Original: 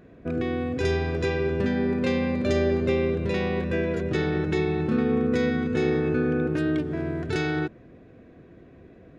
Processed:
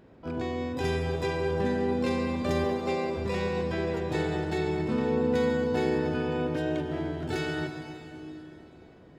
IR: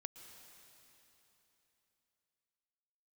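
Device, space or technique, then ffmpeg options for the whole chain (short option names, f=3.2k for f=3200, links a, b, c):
shimmer-style reverb: -filter_complex "[0:a]asplit=3[a][b][c];[a]afade=t=out:st=2.64:d=0.02[d];[b]highpass=f=220:w=0.5412,highpass=f=220:w=1.3066,afade=t=in:st=2.64:d=0.02,afade=t=out:st=3.16:d=0.02[e];[c]afade=t=in:st=3.16:d=0.02[f];[d][e][f]amix=inputs=3:normalize=0,asplit=2[g][h];[h]asetrate=88200,aresample=44100,atempo=0.5,volume=-9dB[i];[g][i]amix=inputs=2:normalize=0[j];[1:a]atrim=start_sample=2205[k];[j][k]afir=irnorm=-1:irlink=0"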